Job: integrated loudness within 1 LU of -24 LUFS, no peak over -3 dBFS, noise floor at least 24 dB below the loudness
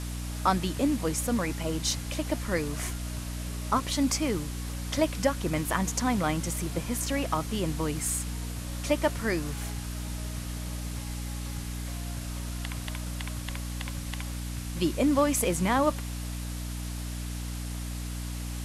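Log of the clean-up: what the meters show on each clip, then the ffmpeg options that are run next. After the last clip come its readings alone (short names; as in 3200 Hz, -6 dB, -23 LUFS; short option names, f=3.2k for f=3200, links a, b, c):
hum 60 Hz; harmonics up to 300 Hz; hum level -33 dBFS; noise floor -36 dBFS; noise floor target -55 dBFS; loudness -30.5 LUFS; peak -10.0 dBFS; loudness target -24.0 LUFS
-> -af "bandreject=f=60:t=h:w=6,bandreject=f=120:t=h:w=6,bandreject=f=180:t=h:w=6,bandreject=f=240:t=h:w=6,bandreject=f=300:t=h:w=6"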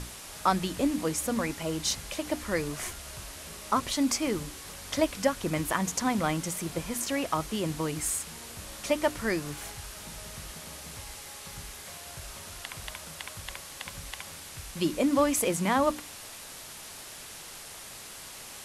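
hum none; noise floor -45 dBFS; noise floor target -56 dBFS
-> -af "afftdn=nr=11:nf=-45"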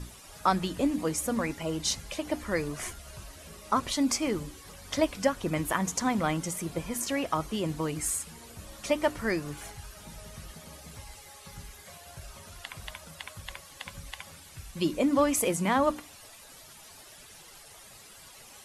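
noise floor -51 dBFS; noise floor target -54 dBFS
-> -af "afftdn=nr=6:nf=-51"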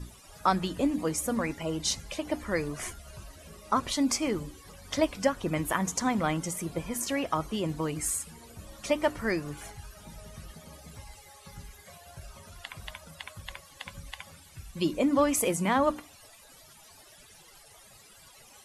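noise floor -55 dBFS; loudness -29.5 LUFS; peak -10.5 dBFS; loudness target -24.0 LUFS
-> -af "volume=5.5dB"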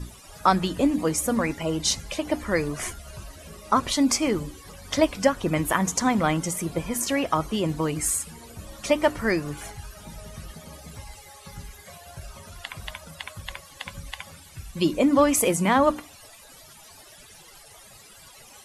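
loudness -24.0 LUFS; peak -5.0 dBFS; noise floor -49 dBFS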